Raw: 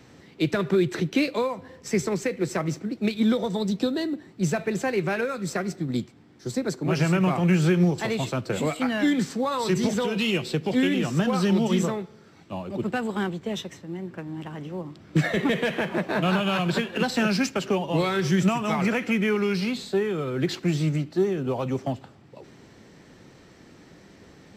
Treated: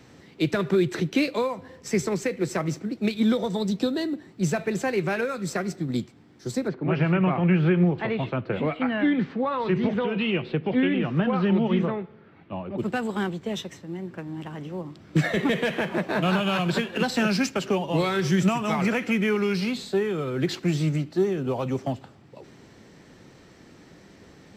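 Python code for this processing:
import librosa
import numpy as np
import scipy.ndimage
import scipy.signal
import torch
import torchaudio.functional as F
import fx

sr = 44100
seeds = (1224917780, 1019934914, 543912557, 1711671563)

y = fx.lowpass(x, sr, hz=2900.0, slope=24, at=(6.67, 12.77), fade=0.02)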